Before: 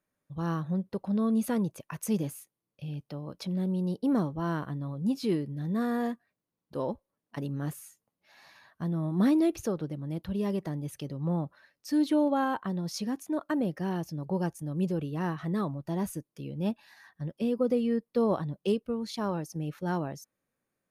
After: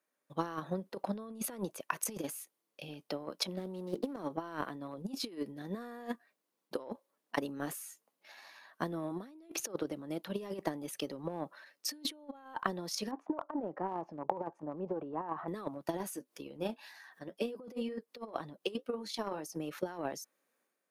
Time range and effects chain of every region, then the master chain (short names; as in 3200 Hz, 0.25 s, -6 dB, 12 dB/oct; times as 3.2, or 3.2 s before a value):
3.58–4.17 median filter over 15 samples + notches 50/100/150/200/250/300/350/400 Hz + negative-ratio compressor -33 dBFS
13.11–15.48 compressor 2:1, threshold -36 dBFS + synth low-pass 940 Hz, resonance Q 2.6
15.99–19.55 upward compressor, threshold -44 dBFS + flange 2 Hz, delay 5.3 ms, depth 4.7 ms, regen -48%
whole clip: Bessel high-pass 370 Hz, order 4; negative-ratio compressor -38 dBFS, ratio -0.5; transient shaper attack +10 dB, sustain +6 dB; gain -3.5 dB